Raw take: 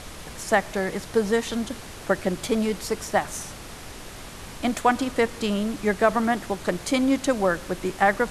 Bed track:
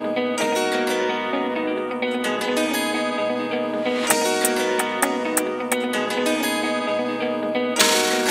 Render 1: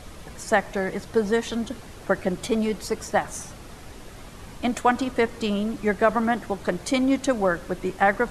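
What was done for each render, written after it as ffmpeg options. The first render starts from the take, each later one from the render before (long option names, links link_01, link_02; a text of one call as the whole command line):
ffmpeg -i in.wav -af "afftdn=noise_reduction=7:noise_floor=-40" out.wav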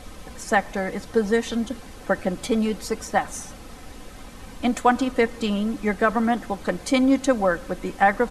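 ffmpeg -i in.wav -af "aecho=1:1:3.9:0.44" out.wav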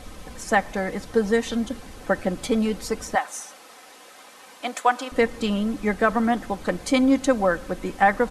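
ffmpeg -i in.wav -filter_complex "[0:a]asettb=1/sr,asplit=3[link_01][link_02][link_03];[link_01]atrim=end=3.154[link_04];[link_02]atrim=start=3.15:end=5.12,asetpts=PTS-STARTPTS,afade=type=in:duration=0.004:curve=qsin,afade=type=out:start_time=1.966:duration=0.004:curve=qsin,highpass=570[link_05];[link_03]atrim=start=5.116[link_06];[link_04][link_05]acrossfade=duration=0.004:curve1=hsin:curve2=qsin[link_07];[link_07][link_06]acrossfade=duration=0.004:curve1=qsin:curve2=hsin" out.wav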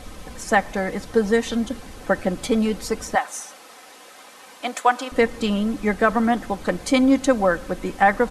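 ffmpeg -i in.wav -af "volume=2dB,alimiter=limit=-3dB:level=0:latency=1" out.wav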